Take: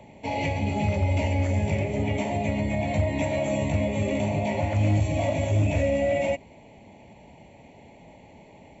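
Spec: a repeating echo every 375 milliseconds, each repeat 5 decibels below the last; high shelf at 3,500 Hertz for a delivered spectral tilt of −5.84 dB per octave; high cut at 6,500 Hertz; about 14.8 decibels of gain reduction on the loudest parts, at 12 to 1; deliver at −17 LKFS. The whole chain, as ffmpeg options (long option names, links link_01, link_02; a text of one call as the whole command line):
ffmpeg -i in.wav -af "lowpass=6500,highshelf=frequency=3500:gain=-4.5,acompressor=threshold=-34dB:ratio=12,aecho=1:1:375|750|1125|1500|1875|2250|2625:0.562|0.315|0.176|0.0988|0.0553|0.031|0.0173,volume=20dB" out.wav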